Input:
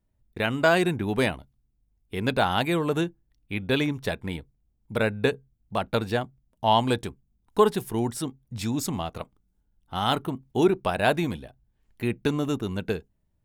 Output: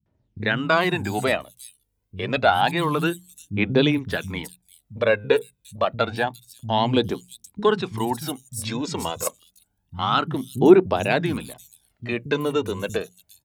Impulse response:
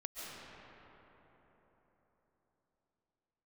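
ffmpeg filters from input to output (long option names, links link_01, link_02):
-filter_complex "[0:a]highpass=120,bandreject=frequency=60:width_type=h:width=6,bandreject=frequency=120:width_type=h:width=6,bandreject=frequency=180:width_type=h:width=6,asplit=2[link_01][link_02];[link_02]alimiter=limit=-18.5dB:level=0:latency=1:release=323,volume=-1.5dB[link_03];[link_01][link_03]amix=inputs=2:normalize=0,aphaser=in_gain=1:out_gain=1:delay=2.2:decay=0.56:speed=0.28:type=triangular,acrossover=split=190|5800[link_04][link_05][link_06];[link_05]adelay=60[link_07];[link_06]adelay=410[link_08];[link_04][link_07][link_08]amix=inputs=3:normalize=0"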